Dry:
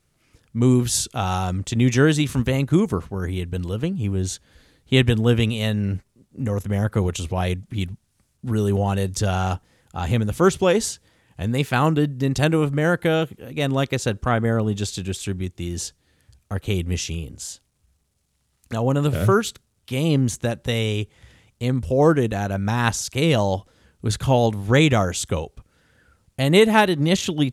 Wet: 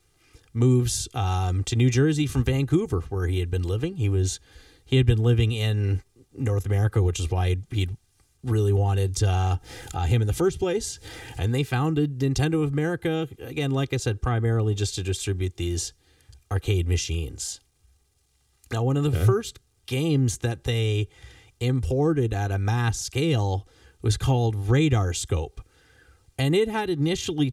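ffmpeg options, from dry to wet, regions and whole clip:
ffmpeg -i in.wav -filter_complex "[0:a]asettb=1/sr,asplit=3[link_01][link_02][link_03];[link_01]atrim=end=9.544[link_04];[link_02]atrim=start=9.54:end=11.41,asetpts=PTS-STARTPTS,afade=type=in:duration=0.004:curve=qsin,afade=type=out:start_time=1.866:duration=0.004:curve=qsin,acompressor=mode=upward:threshold=-25dB:ratio=2.5:attack=3.2:release=140:knee=2.83:detection=peak,asuperstop=centerf=1100:order=4:qfactor=7.6[link_05];[link_03]atrim=start=11.406[link_06];[link_04][link_05]acrossfade=duration=0.004:curve1=hsin:curve2=qsin[link_07];[link_07][link_06]acrossfade=duration=0.004:curve1=qsin:curve2=hsin,aecho=1:1:2.5:0.74,acrossover=split=270[link_08][link_09];[link_09]acompressor=threshold=-31dB:ratio=3[link_10];[link_08][link_10]amix=inputs=2:normalize=0,equalizer=frequency=5000:width=0.57:gain=2.5" out.wav

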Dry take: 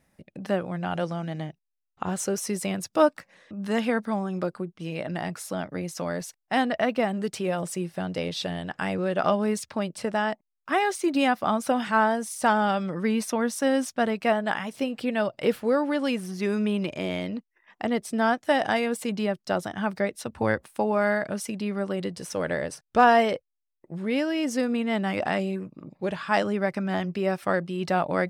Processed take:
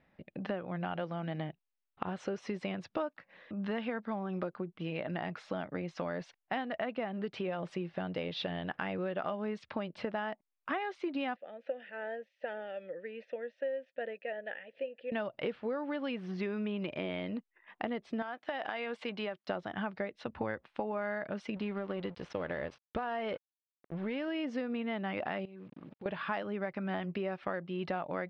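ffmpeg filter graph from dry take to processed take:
ffmpeg -i in.wav -filter_complex "[0:a]asettb=1/sr,asplit=3[link_01][link_02][link_03];[link_01]atrim=end=11.364[link_04];[link_02]atrim=start=11.36:end=15.12,asetpts=PTS-STARTPTS,afade=type=in:duration=0.004:curve=qsin,afade=type=out:start_time=3.756:duration=0.004:curve=qsin,acompressor=mode=upward:threshold=-35dB:ratio=2.5:attack=3.2:release=140:knee=2.83:detection=peak,tremolo=f=2.6:d=0.38,asplit=3[link_05][link_06][link_07];[link_05]bandpass=frequency=530:width_type=q:width=8,volume=0dB[link_08];[link_06]bandpass=frequency=1840:width_type=q:width=8,volume=-6dB[link_09];[link_07]bandpass=frequency=2480:width_type=q:width=8,volume=-9dB[link_10];[link_08][link_09][link_10]amix=inputs=3:normalize=0[link_11];[link_03]atrim=start=15.116[link_12];[link_04][link_11]acrossfade=duration=0.004:curve1=hsin:curve2=qsin[link_13];[link_13][link_12]acrossfade=duration=0.004:curve1=qsin:curve2=hsin,asettb=1/sr,asplit=3[link_14][link_15][link_16];[link_14]atrim=end=18.224[link_17];[link_15]atrim=start=18.22:end=19.49,asetpts=PTS-STARTPTS,afade=type=in:duration=0.004:curve=qsin,afade=type=out:start_time=1.266:duration=0.004:curve=qsin,highpass=frequency=580:poles=1,acompressor=threshold=-27dB:ratio=5:attack=3.2:release=140:knee=1:detection=peak[link_18];[link_16]atrim=start=19.486[link_19];[link_17][link_18]acrossfade=duration=0.004:curve1=hsin:curve2=qsin[link_20];[link_20][link_19]acrossfade=duration=0.004:curve1=qsin:curve2=hsin,asettb=1/sr,asplit=3[link_21][link_22][link_23];[link_21]atrim=end=21.564[link_24];[link_22]atrim=start=21.56:end=24.28,asetpts=PTS-STARTPTS,afade=type=in:duration=0.004:curve=qsin,afade=type=out:start_time=2.716:duration=0.004:curve=qsin,equalizer=frequency=62:width=1.8:gain=11.5,acompressor=threshold=-23dB:ratio=6:attack=3.2:release=140:knee=1:detection=peak,aeval=exprs='sgn(val(0))*max(abs(val(0))-0.00562,0)':channel_layout=same[link_25];[link_23]atrim=start=24.276[link_26];[link_24][link_25]acrossfade=duration=0.004:curve1=hsin:curve2=qsin[link_27];[link_27][link_26]acrossfade=duration=0.004:curve1=qsin:curve2=hsin,asettb=1/sr,asplit=3[link_28][link_29][link_30];[link_28]atrim=end=25.454[link_31];[link_29]atrim=start=25.45:end=26.06,asetpts=PTS-STARTPTS,afade=type=in:duration=0.004:curve=qsin,afade=type=out:start_time=0.606:duration=0.004:curve=qsin,acrusher=bits=8:mix=0:aa=0.5,acompressor=threshold=-42dB:ratio=10:attack=3.2:release=140:knee=1:detection=peak[link_32];[link_30]atrim=start=26.056[link_33];[link_31][link_32]acrossfade=duration=0.004:curve1=hsin:curve2=qsin[link_34];[link_34][link_33]acrossfade=duration=0.004:curve1=qsin:curve2=hsin,lowpass=frequency=3500:width=0.5412,lowpass=frequency=3500:width=1.3066,lowshelf=frequency=190:gain=-5,acompressor=threshold=-33dB:ratio=6" out.wav

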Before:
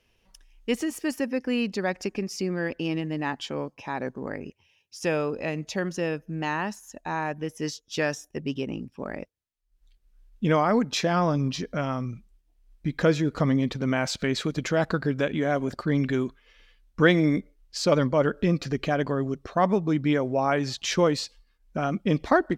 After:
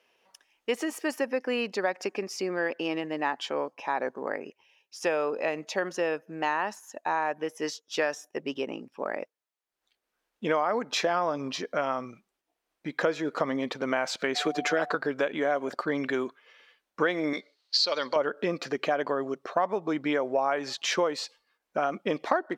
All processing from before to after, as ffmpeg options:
ffmpeg -i in.wav -filter_complex "[0:a]asettb=1/sr,asplit=3[link_01][link_02][link_03];[link_01]atrim=end=14.354[link_04];[link_02]atrim=start=14.35:end=14.95,asetpts=PTS-STARTPTS,afade=type=in:duration=0.004:curve=qsin,afade=type=out:start_time=0.596:duration=0.004:curve=qsin,aeval=exprs='val(0)+0.00562*sin(2*PI*730*n/s)':channel_layout=same,highpass=frequency=160:width=0.5412,highpass=frequency=160:width=1.3066,aecho=1:1:6.8:1,atrim=end_sample=26460[link_05];[link_03]atrim=start=14.946[link_06];[link_04][link_05]acrossfade=duration=0.004:curve1=hsin:curve2=qsin[link_07];[link_07][link_06]acrossfade=duration=0.004:curve1=qsin:curve2=hsin,asettb=1/sr,asplit=3[link_08][link_09][link_10];[link_08]atrim=end=17.334[link_11];[link_09]atrim=start=17.33:end=18.16,asetpts=PTS-STARTPTS,afade=type=in:duration=0.004:curve=qsin,afade=type=out:start_time=0.826:duration=0.004:curve=qsin,aemphasis=mode=production:type=riaa,acompressor=threshold=-27dB:ratio=2:attack=3.2:release=140:knee=1:detection=peak,lowpass=frequency=4300:width_type=q:width=6.8[link_12];[link_10]atrim=start=18.156[link_13];[link_11][link_12]acrossfade=duration=0.004:curve1=hsin:curve2=qsin[link_14];[link_14][link_13]acrossfade=duration=0.004:curve1=qsin:curve2=hsin,highpass=570,highshelf=frequency=2000:gain=-10.5,acompressor=threshold=-31dB:ratio=4,volume=8dB" out.wav

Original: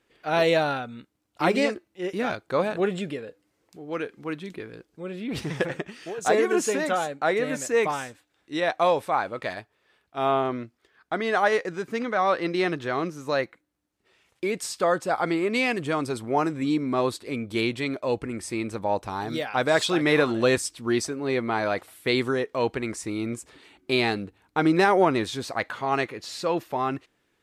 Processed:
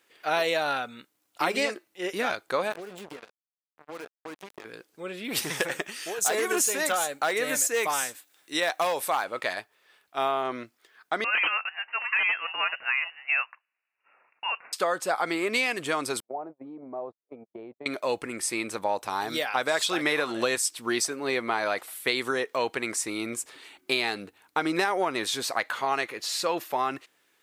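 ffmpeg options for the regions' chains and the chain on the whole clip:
ffmpeg -i in.wav -filter_complex "[0:a]asettb=1/sr,asplit=3[link_01][link_02][link_03];[link_01]atrim=end=2.724[link_04];[link_02]atrim=start=2.72:end=4.65,asetpts=PTS-STARTPTS,afade=type=in:duration=0.004:curve=qsin,afade=type=out:start_time=1.926:duration=0.004:curve=qsin,acrusher=bits=4:mix=0:aa=0.5,acompressor=threshold=-38dB:ratio=20:attack=3.2:release=140:knee=1:detection=peak,tiltshelf=frequency=1300:gain=5[link_05];[link_03]atrim=start=4.646[link_06];[link_04][link_05]acrossfade=duration=0.004:curve1=hsin:curve2=qsin[link_07];[link_07][link_06]acrossfade=duration=0.004:curve1=qsin:curve2=hsin,asettb=1/sr,asplit=3[link_08][link_09][link_10];[link_08]atrim=end=5.244[link_11];[link_09]atrim=start=5.24:end=9.25,asetpts=PTS-STARTPTS,afade=type=in:duration=0.004:curve=qsin,afade=type=out:start_time=4.006:duration=0.004:curve=qsin,highshelf=frequency=6800:gain=11.5,volume=16dB,asoftclip=hard,volume=-16dB[link_12];[link_10]atrim=start=9.246[link_13];[link_11][link_12]acrossfade=duration=0.004:curve1=hsin:curve2=qsin[link_14];[link_14][link_13]acrossfade=duration=0.004:curve1=qsin:curve2=hsin,asettb=1/sr,asplit=3[link_15][link_16][link_17];[link_15]atrim=end=11.244[link_18];[link_16]atrim=start=11.24:end=14.73,asetpts=PTS-STARTPTS,afade=type=in:duration=0.004:curve=qsin,afade=type=out:start_time=3.486:duration=0.004:curve=qsin,highpass=frequency=540:width=0.5412,highpass=frequency=540:width=1.3066,aeval=exprs='(mod(5.31*val(0)+1,2)-1)/5.31':channel_layout=same,lowpass=frequency=2700:width_type=q:width=0.5098,lowpass=frequency=2700:width_type=q:width=0.6013,lowpass=frequency=2700:width_type=q:width=0.9,lowpass=frequency=2700:width_type=q:width=2.563,afreqshift=-3200[link_19];[link_17]atrim=start=14.726[link_20];[link_18][link_19]acrossfade=duration=0.004:curve1=hsin:curve2=qsin[link_21];[link_21][link_20]acrossfade=duration=0.004:curve1=qsin:curve2=hsin,asettb=1/sr,asplit=3[link_22][link_23][link_24];[link_22]atrim=end=16.204[link_25];[link_23]atrim=start=16.2:end=17.86,asetpts=PTS-STARTPTS,afade=type=in:duration=0.004:curve=qsin,afade=type=out:start_time=1.656:duration=0.004:curve=qsin,agate=range=-60dB:threshold=-29dB:ratio=16:release=100:detection=peak,acompressor=threshold=-37dB:ratio=8:attack=3.2:release=140:knee=1:detection=peak,lowpass=frequency=690:width_type=q:width=3[link_26];[link_24]atrim=start=17.856[link_27];[link_25][link_26]acrossfade=duration=0.004:curve1=hsin:curve2=qsin[link_28];[link_28][link_27]acrossfade=duration=0.004:curve1=qsin:curve2=hsin,highpass=frequency=800:poles=1,highshelf=frequency=11000:gain=11.5,acompressor=threshold=-27dB:ratio=6,volume=5dB" out.wav

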